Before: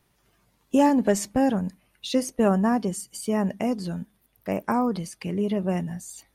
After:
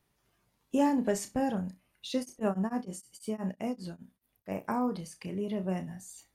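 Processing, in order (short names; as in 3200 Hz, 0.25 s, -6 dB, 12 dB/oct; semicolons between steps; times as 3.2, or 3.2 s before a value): flutter echo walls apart 5.5 m, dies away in 0.2 s; 2.22–4.63 beating tremolo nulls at 7.3 Hz -> 3.9 Hz; gain -8 dB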